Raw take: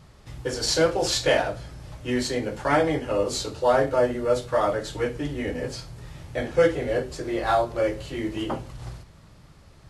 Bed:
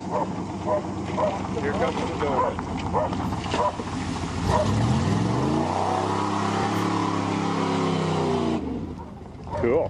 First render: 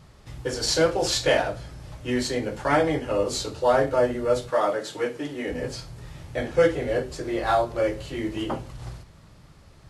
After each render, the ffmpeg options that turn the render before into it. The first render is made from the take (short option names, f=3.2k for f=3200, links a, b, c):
-filter_complex "[0:a]asettb=1/sr,asplit=3[a][b][c];[a]atrim=end=4.504[d];[b]atrim=start=4.5:end=5.5,asetpts=PTS-STARTPTS,afade=t=in:d=0.004:c=qsin,afade=t=out:st=0.996:d=0.004:c=qsin,highpass=230[e];[c]atrim=start=5.496[f];[d][e]acrossfade=d=0.004:c1=hsin:c2=qsin[g];[g][f]acrossfade=d=0.004:c1=qsin:c2=hsin"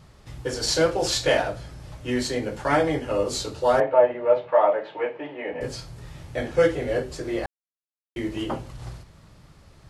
-filter_complex "[0:a]asettb=1/sr,asplit=3[a][b][c];[a]atrim=end=3.804[d];[b]atrim=start=3.8:end=5.61,asetpts=PTS-STARTPTS,afade=t=in:d=0.004:c=qsin,afade=t=out:st=1.806:d=0.004:c=qsin,highpass=230,equalizer=f=250:t=q:w=4:g=-8,equalizer=f=370:t=q:w=4:g=-3,equalizer=f=630:t=q:w=4:g=6,equalizer=f=900:t=q:w=4:g=7,equalizer=f=1.4k:t=q:w=4:g=-4,equalizer=f=2.5k:t=q:w=4:g=3,lowpass=f=2.7k:w=0.5412,lowpass=f=2.7k:w=1.3066[e];[c]atrim=start=5.606[f];[d][e]acrossfade=d=0.004:c1=hsin:c2=qsin[g];[g][f]acrossfade=d=0.004:c1=qsin:c2=hsin,asplit=3[h][i][j];[h]atrim=end=7.46,asetpts=PTS-STARTPTS,afade=t=out:st=7.456:d=0.004:c=hsin[k];[i]atrim=start=7.46:end=8.16,asetpts=PTS-STARTPTS,volume=0[l];[j]atrim=start=8.16,asetpts=PTS-STARTPTS,afade=t=in:d=0.004:c=hsin[m];[k][l][m]concat=n=3:v=0:a=1"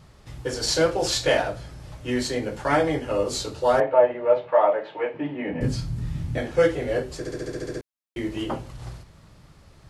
-filter_complex "[0:a]asettb=1/sr,asplit=3[a][b][c];[a]atrim=end=5.144[d];[b]atrim=start=5.14:end=6.38,asetpts=PTS-STARTPTS,afade=t=in:d=0.004:c=qsin,afade=t=out:st=1.236:d=0.004:c=qsin,lowshelf=f=330:t=q:w=1.5:g=11[e];[c]atrim=start=6.376[f];[d][e]acrossfade=d=0.004:c1=hsin:c2=qsin[g];[g][f]acrossfade=d=0.004:c1=qsin:c2=hsin,asplit=10[h][i][j][k][l][m][n][o][p][q];[h]atrim=end=7.252[r];[i]atrim=start=7.178:end=7.252[s];[j]atrim=start=7.178:end=7.252[t];[k]atrim=start=7.178:end=7.252[u];[l]atrim=start=7.178:end=7.252[v];[m]atrim=start=7.178:end=7.252[w];[n]atrim=start=7.178:end=7.252[x];[o]atrim=start=7.178:end=7.252[y];[p]atrim=start=7.178:end=7.252[z];[q]atrim=start=7.808[aa];[r][s]acrossfade=d=0.004:c1=hsin:c2=hsin[ab];[ab][t]acrossfade=d=0.004:c1=hsin:c2=hsin[ac];[ac][u]acrossfade=d=0.004:c1=hsin:c2=hsin[ad];[ad][v]acrossfade=d=0.004:c1=hsin:c2=hsin[ae];[ae][w]acrossfade=d=0.004:c1=hsin:c2=hsin[af];[af][x]acrossfade=d=0.004:c1=hsin:c2=hsin[ag];[ag][y]acrossfade=d=0.004:c1=hsin:c2=hsin[ah];[ah][z]acrossfade=d=0.004:c1=hsin:c2=hsin[ai];[ai][aa]acrossfade=d=0.004:c1=hsin:c2=hsin"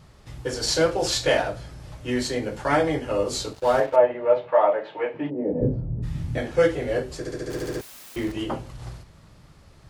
-filter_complex "[0:a]asettb=1/sr,asplit=3[a][b][c];[a]atrim=end=3.534[d];[b]atrim=start=3.53:end=3.96,asetpts=PTS-STARTPTS,afade=t=in:d=0.004:c=qsin,afade=t=out:st=0.426:d=0.004:c=qsin,aeval=exprs='sgn(val(0))*max(abs(val(0))-0.0119,0)':c=same[e];[c]atrim=start=3.956[f];[d][e]acrossfade=d=0.004:c1=hsin:c2=qsin[g];[g][f]acrossfade=d=0.004:c1=qsin:c2=hsin,asplit=3[h][i][j];[h]afade=t=out:st=5.29:d=0.02[k];[i]lowpass=f=510:t=q:w=2.3,afade=t=in:st=5.29:d=0.02,afade=t=out:st=6.02:d=0.02[l];[j]afade=t=in:st=6.02:d=0.02[m];[k][l][m]amix=inputs=3:normalize=0,asettb=1/sr,asplit=3[n][o][p];[n]atrim=end=7.504[q];[o]atrim=start=7.5:end=8.32,asetpts=PTS-STARTPTS,afade=t=in:d=0.004:c=qsin,afade=t=out:st=0.816:d=0.004:c=qsin,aeval=exprs='val(0)+0.5*0.0188*sgn(val(0))':c=same[r];[p]atrim=start=8.316[s];[q][r]acrossfade=d=0.004:c1=hsin:c2=qsin[t];[t][s]acrossfade=d=0.004:c1=qsin:c2=hsin"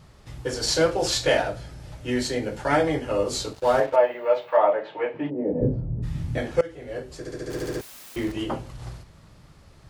-filter_complex "[0:a]asettb=1/sr,asplit=3[a][b][c];[a]atrim=end=1.304[d];[b]atrim=start=1.3:end=2.87,asetpts=PTS-STARTPTS,afade=t=in:d=0.004:c=qsin,afade=t=out:st=1.566:d=0.004:c=qsin,bandreject=f=1.1k:w=10[e];[c]atrim=start=2.866[f];[d][e]acrossfade=d=0.004:c1=hsin:c2=qsin[g];[g][f]acrossfade=d=0.004:c1=qsin:c2=hsin,asettb=1/sr,asplit=3[h][i][j];[h]atrim=end=3.964[k];[i]atrim=start=3.96:end=4.57,asetpts=PTS-STARTPTS,afade=t=in:d=0.004:c=qsin,afade=t=out:st=0.606:d=0.004:c=qsin,aemphasis=mode=production:type=riaa[l];[j]atrim=start=4.566[m];[k][l]acrossfade=d=0.004:c1=hsin:c2=qsin[n];[n][m]acrossfade=d=0.004:c1=qsin:c2=hsin,asplit=2[o][p];[o]atrim=end=6.61,asetpts=PTS-STARTPTS,afade=t=out:st=6.606:d=0.004:c=hsin:silence=0.0891251[q];[p]atrim=start=6.61,asetpts=PTS-STARTPTS,afade=t=in:d=1.02:silence=0.0891251[r];[q][r]concat=n=2:v=0:a=1"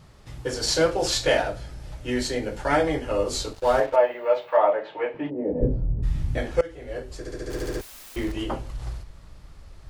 -af "asubboost=boost=5.5:cutoff=55"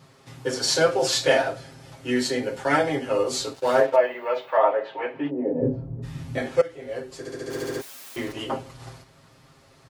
-af "highpass=160,aecho=1:1:7.5:0.7"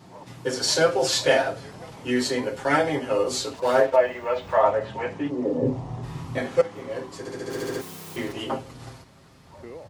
-filter_complex "[1:a]volume=-19dB[a];[0:a][a]amix=inputs=2:normalize=0"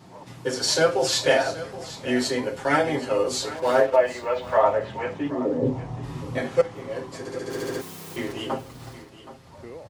-af "aecho=1:1:773:0.168"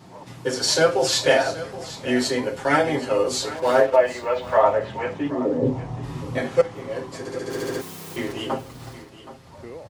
-af "volume=2dB"